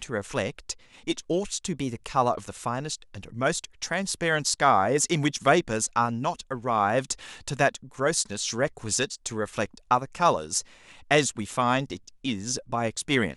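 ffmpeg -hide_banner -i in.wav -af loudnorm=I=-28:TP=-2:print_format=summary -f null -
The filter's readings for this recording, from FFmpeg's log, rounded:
Input Integrated:    -26.6 LUFS
Input True Peak:      -6.9 dBTP
Input LRA:             4.5 LU
Input Threshold:     -36.9 LUFS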